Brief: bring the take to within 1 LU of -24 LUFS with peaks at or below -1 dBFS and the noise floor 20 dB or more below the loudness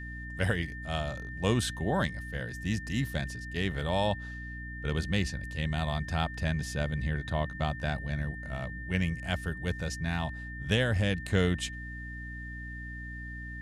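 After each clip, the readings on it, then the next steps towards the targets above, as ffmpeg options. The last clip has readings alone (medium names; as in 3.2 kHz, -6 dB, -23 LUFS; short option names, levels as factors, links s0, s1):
hum 60 Hz; highest harmonic 300 Hz; hum level -39 dBFS; steady tone 1.8 kHz; tone level -42 dBFS; loudness -32.5 LUFS; peak level -14.0 dBFS; loudness target -24.0 LUFS
-> -af "bandreject=f=60:t=h:w=6,bandreject=f=120:t=h:w=6,bandreject=f=180:t=h:w=6,bandreject=f=240:t=h:w=6,bandreject=f=300:t=h:w=6"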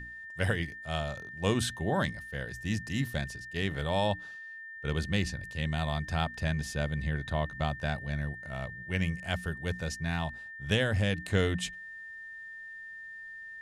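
hum not found; steady tone 1.8 kHz; tone level -42 dBFS
-> -af "bandreject=f=1800:w=30"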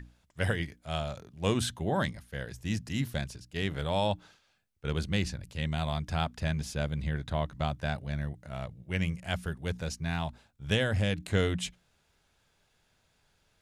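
steady tone not found; loudness -33.0 LUFS; peak level -15.0 dBFS; loudness target -24.0 LUFS
-> -af "volume=2.82"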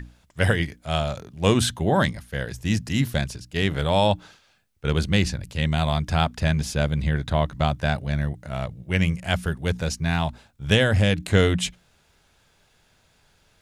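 loudness -24.0 LUFS; peak level -6.0 dBFS; noise floor -62 dBFS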